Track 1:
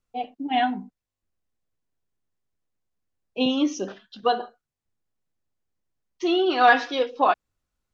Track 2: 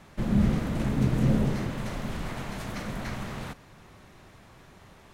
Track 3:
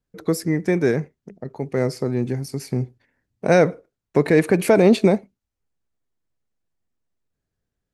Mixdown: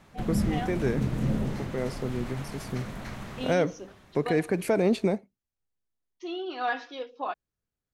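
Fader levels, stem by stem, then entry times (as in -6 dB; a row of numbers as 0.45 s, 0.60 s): -13.0 dB, -4.0 dB, -9.5 dB; 0.00 s, 0.00 s, 0.00 s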